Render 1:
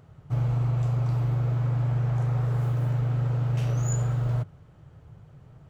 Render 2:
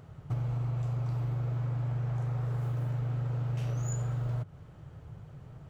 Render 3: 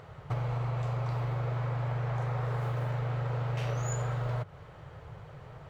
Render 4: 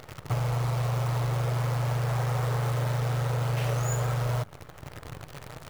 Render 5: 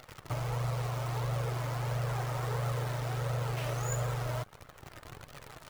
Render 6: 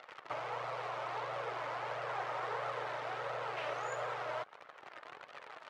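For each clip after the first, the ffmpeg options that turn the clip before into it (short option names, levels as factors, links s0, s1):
-af "acompressor=threshold=0.0251:ratio=6,volume=1.26"
-af "equalizer=f=250:t=o:w=1:g=-6,equalizer=f=500:t=o:w=1:g=8,equalizer=f=1000:t=o:w=1:g=7,equalizer=f=2000:t=o:w=1:g=8,equalizer=f=4000:t=o:w=1:g=6"
-af "acrusher=bits=8:dc=4:mix=0:aa=0.000001,volume=1.68"
-filter_complex "[0:a]flanger=delay=1.4:depth=2:regen=46:speed=1.5:shape=triangular,acrossover=split=860[s0][s1];[s0]aeval=exprs='sgn(val(0))*max(abs(val(0))-0.00237,0)':c=same[s2];[s2][s1]amix=inputs=2:normalize=0"
-af "highpass=560,lowpass=2800,volume=1.26"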